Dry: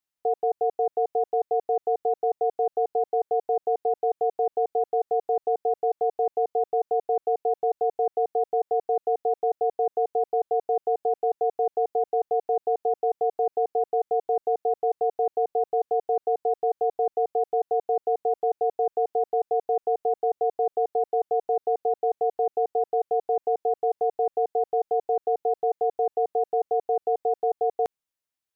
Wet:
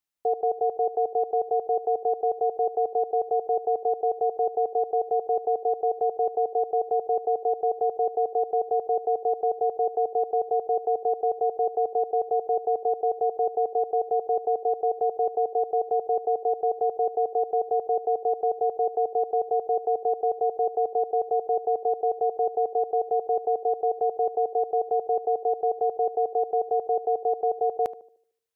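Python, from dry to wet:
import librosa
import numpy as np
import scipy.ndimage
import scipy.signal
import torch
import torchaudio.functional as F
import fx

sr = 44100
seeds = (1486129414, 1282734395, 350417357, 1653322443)

y = fx.echo_banded(x, sr, ms=75, feedback_pct=45, hz=410.0, wet_db=-13.5)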